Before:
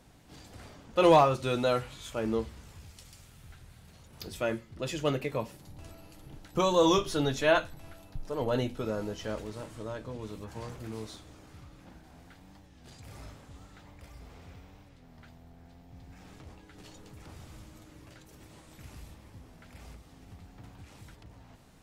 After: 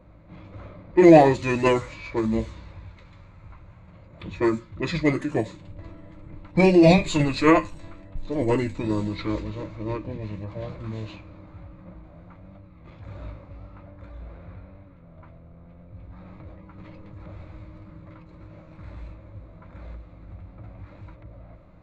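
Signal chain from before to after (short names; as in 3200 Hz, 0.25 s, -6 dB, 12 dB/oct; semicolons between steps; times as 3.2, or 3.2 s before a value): low-pass opened by the level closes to 1900 Hz, open at -27.5 dBFS; ripple EQ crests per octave 1.2, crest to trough 10 dB; formant shift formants -6 st; gain +6.5 dB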